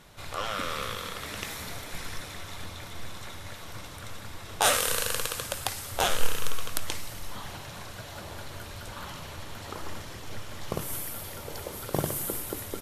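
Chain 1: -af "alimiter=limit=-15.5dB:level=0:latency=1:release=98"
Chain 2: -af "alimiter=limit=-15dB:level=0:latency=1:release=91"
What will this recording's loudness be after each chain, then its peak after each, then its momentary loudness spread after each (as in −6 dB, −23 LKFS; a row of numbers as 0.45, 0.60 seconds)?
−35.5, −35.5 LKFS; −15.5, −15.0 dBFS; 11, 11 LU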